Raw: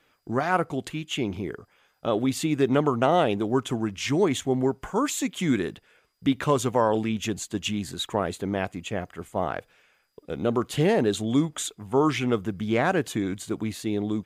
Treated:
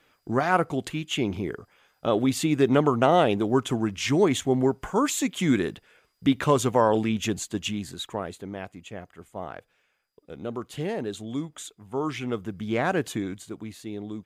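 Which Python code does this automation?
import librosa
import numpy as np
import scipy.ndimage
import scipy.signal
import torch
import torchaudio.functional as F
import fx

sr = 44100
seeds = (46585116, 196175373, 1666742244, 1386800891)

y = fx.gain(x, sr, db=fx.line((7.35, 1.5), (8.54, -8.5), (11.77, -8.5), (13.08, -0.5), (13.54, -8.0)))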